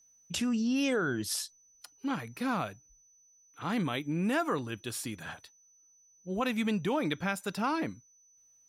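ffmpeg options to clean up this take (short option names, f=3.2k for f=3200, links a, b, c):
-af "bandreject=f=6k:w=30"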